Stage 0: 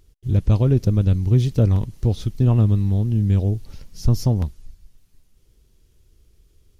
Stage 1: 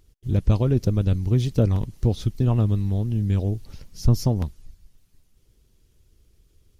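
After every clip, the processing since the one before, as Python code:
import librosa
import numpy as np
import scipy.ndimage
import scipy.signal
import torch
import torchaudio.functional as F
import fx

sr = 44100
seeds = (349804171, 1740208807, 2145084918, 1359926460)

y = fx.hpss(x, sr, part='percussive', gain_db=5)
y = F.gain(torch.from_numpy(y), -4.5).numpy()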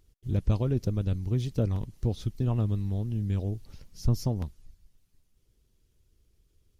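y = fx.rider(x, sr, range_db=10, speed_s=2.0)
y = F.gain(torch.from_numpy(y), -7.0).numpy()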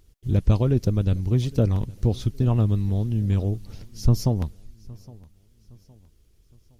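y = fx.echo_feedback(x, sr, ms=814, feedback_pct=41, wet_db=-23.0)
y = F.gain(torch.from_numpy(y), 6.5).numpy()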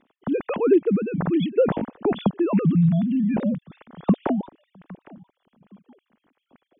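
y = fx.sine_speech(x, sr)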